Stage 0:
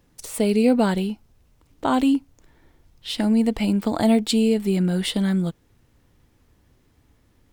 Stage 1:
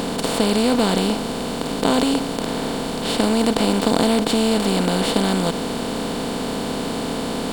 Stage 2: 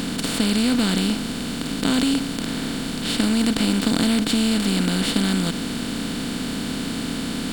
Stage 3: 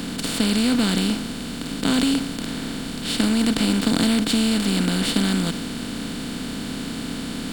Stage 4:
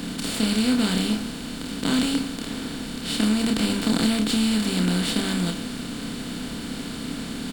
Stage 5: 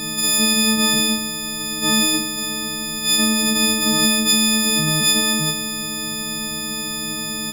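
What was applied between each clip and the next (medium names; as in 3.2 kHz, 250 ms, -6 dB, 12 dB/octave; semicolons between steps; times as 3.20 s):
spectral levelling over time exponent 0.2; trim -4.5 dB
high-order bell 660 Hz -10.5 dB
three bands expanded up and down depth 40%
doubling 28 ms -4.5 dB; trim -3.5 dB
partials quantised in pitch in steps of 6 st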